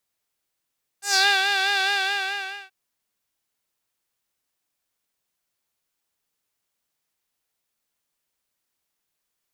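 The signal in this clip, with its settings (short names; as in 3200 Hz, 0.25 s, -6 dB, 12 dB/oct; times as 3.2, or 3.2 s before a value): synth patch with vibrato G5, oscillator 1 triangle, oscillator 2 triangle, interval +12 st, oscillator 2 level -3.5 dB, sub -8 dB, noise -16 dB, filter bandpass, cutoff 2900 Hz, Q 3.1, filter envelope 1.5 oct, filter decay 0.24 s, filter sustain 15%, attack 0.123 s, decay 0.29 s, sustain -6 dB, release 0.83 s, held 0.85 s, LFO 4.7 Hz, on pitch 56 cents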